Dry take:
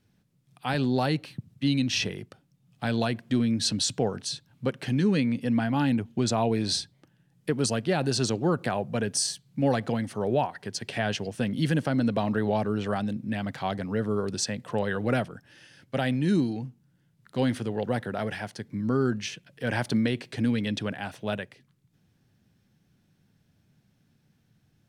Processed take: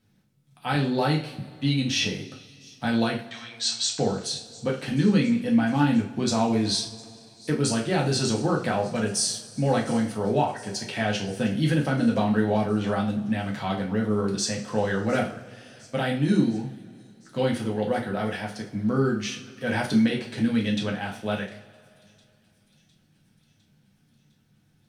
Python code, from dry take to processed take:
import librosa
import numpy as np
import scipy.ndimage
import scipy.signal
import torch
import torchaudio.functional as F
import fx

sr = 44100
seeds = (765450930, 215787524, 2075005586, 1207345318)

y = fx.brickwall_bandpass(x, sr, low_hz=720.0, high_hz=8500.0, at=(3.26, 3.99))
y = fx.echo_wet_highpass(y, sr, ms=706, feedback_pct=65, hz=5300.0, wet_db=-18.0)
y = fx.rev_double_slope(y, sr, seeds[0], early_s=0.38, late_s=2.6, knee_db=-22, drr_db=-2.0)
y = y * 10.0 ** (-1.5 / 20.0)